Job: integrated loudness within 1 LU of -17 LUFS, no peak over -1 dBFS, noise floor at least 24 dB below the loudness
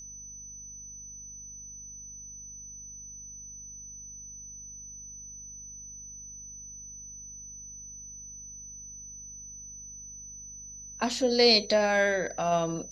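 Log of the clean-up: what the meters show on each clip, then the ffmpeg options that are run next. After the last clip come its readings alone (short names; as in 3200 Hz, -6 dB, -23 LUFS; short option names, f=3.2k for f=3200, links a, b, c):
hum 50 Hz; harmonics up to 250 Hz; hum level -53 dBFS; steady tone 6000 Hz; tone level -42 dBFS; loudness -32.5 LUFS; peak -9.5 dBFS; loudness target -17.0 LUFS
-> -af "bandreject=f=50:t=h:w=4,bandreject=f=100:t=h:w=4,bandreject=f=150:t=h:w=4,bandreject=f=200:t=h:w=4,bandreject=f=250:t=h:w=4"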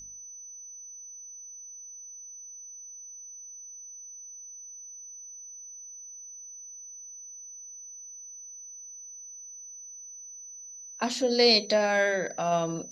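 hum none; steady tone 6000 Hz; tone level -42 dBFS
-> -af "bandreject=f=6k:w=30"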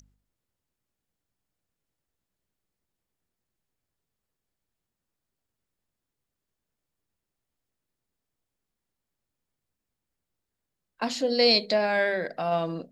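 steady tone none; loudness -24.5 LUFS; peak -9.5 dBFS; loudness target -17.0 LUFS
-> -af "volume=7.5dB"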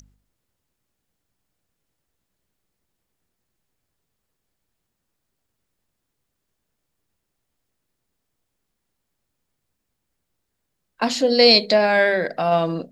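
loudness -17.0 LUFS; peak -2.0 dBFS; noise floor -78 dBFS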